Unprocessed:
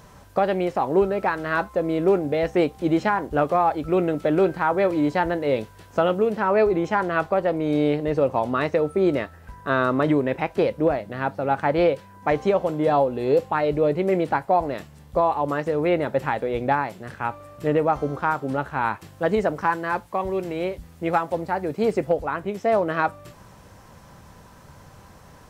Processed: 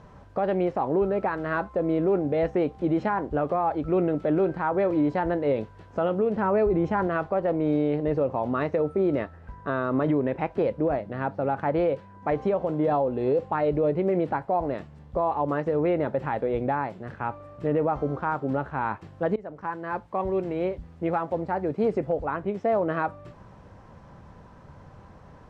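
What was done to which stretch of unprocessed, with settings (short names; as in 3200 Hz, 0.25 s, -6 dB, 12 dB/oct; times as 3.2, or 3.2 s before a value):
6.35–7.07 low shelf 150 Hz +10.5 dB
19.36–20.23 fade in, from -23 dB
whole clip: Bessel low-pass 4700 Hz, order 2; high shelf 2000 Hz -11 dB; limiter -16 dBFS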